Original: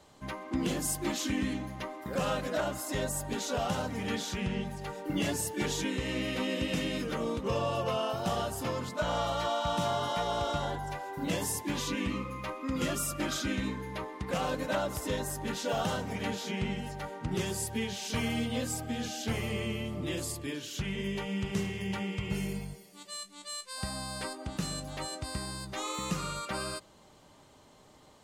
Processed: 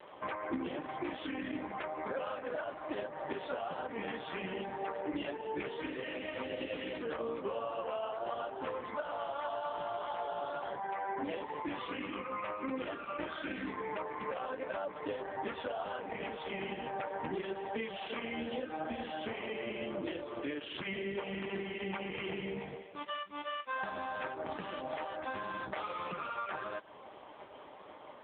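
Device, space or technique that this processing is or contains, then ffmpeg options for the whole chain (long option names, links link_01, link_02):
voicemail: -af "highpass=380,lowpass=2700,acompressor=threshold=-46dB:ratio=12,volume=13.5dB" -ar 8000 -c:a libopencore_amrnb -b:a 4750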